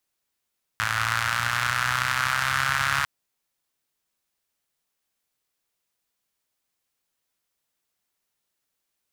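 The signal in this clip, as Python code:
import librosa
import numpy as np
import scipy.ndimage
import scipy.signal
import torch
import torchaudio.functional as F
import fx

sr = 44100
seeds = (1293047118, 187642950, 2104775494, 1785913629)

y = fx.engine_four_rev(sr, seeds[0], length_s=2.25, rpm=3300, resonances_hz=(98.0, 1400.0), end_rpm=4200)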